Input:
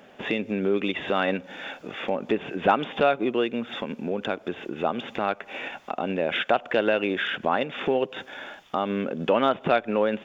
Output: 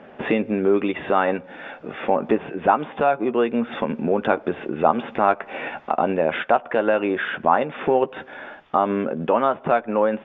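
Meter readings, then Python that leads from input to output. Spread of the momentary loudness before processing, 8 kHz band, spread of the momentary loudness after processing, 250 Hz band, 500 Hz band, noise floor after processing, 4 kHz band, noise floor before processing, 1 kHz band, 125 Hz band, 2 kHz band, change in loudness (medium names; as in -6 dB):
11 LU, no reading, 8 LU, +4.0 dB, +4.5 dB, -45 dBFS, -6.0 dB, -51 dBFS, +6.5 dB, +3.0 dB, +1.5 dB, +4.5 dB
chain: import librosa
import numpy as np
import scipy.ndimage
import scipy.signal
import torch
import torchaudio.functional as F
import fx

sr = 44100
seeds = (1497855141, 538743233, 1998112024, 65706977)

y = scipy.signal.sosfilt(scipy.signal.butter(2, 1900.0, 'lowpass', fs=sr, output='sos'), x)
y = fx.dynamic_eq(y, sr, hz=960.0, q=1.4, threshold_db=-37.0, ratio=4.0, max_db=6)
y = fx.rider(y, sr, range_db=4, speed_s=0.5)
y = fx.doubler(y, sr, ms=13.0, db=-10.5)
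y = y * librosa.db_to_amplitude(3.0)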